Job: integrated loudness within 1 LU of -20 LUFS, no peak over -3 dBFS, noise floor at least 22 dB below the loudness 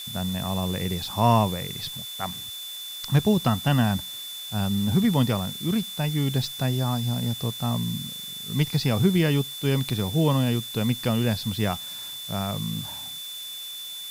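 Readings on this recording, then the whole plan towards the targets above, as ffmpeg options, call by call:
steady tone 3500 Hz; tone level -35 dBFS; noise floor -37 dBFS; noise floor target -48 dBFS; loudness -25.5 LUFS; peak -6.5 dBFS; loudness target -20.0 LUFS
-> -af "bandreject=f=3.5k:w=30"
-af "afftdn=nr=11:nf=-37"
-af "volume=5.5dB,alimiter=limit=-3dB:level=0:latency=1"

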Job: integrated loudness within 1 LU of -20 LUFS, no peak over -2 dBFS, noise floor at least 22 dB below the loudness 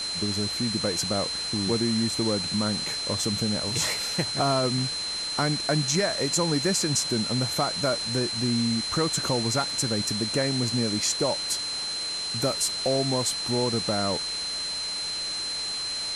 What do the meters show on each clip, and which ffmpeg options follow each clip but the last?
steady tone 4100 Hz; tone level -29 dBFS; noise floor -31 dBFS; noise floor target -48 dBFS; loudness -25.5 LUFS; peak -11.5 dBFS; loudness target -20.0 LUFS
-> -af "bandreject=f=4.1k:w=30"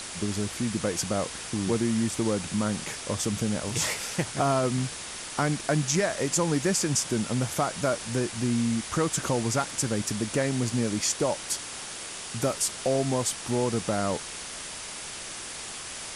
steady tone none; noise floor -39 dBFS; noise floor target -50 dBFS
-> -af "afftdn=nr=11:nf=-39"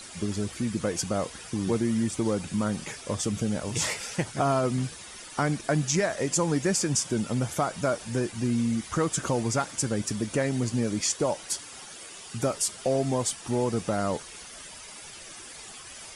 noise floor -44 dBFS; noise floor target -50 dBFS
-> -af "afftdn=nr=6:nf=-44"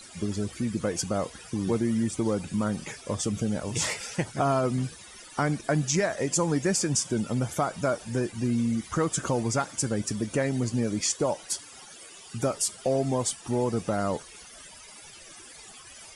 noise floor -48 dBFS; noise floor target -50 dBFS
-> -af "afftdn=nr=6:nf=-48"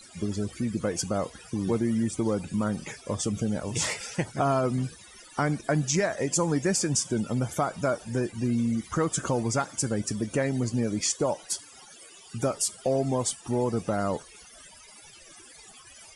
noise floor -51 dBFS; loudness -28.0 LUFS; peak -13.5 dBFS; loudness target -20.0 LUFS
-> -af "volume=8dB"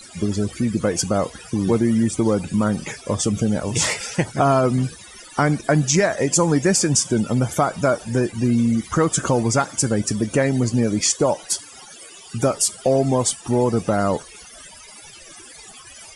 loudness -20.0 LUFS; peak -5.5 dBFS; noise floor -43 dBFS

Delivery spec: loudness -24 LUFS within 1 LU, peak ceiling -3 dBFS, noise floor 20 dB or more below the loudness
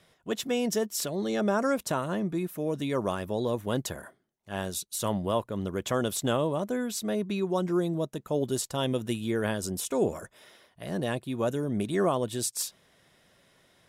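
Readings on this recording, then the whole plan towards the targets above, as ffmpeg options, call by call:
loudness -30.0 LUFS; peak -14.5 dBFS; loudness target -24.0 LUFS
-> -af "volume=6dB"

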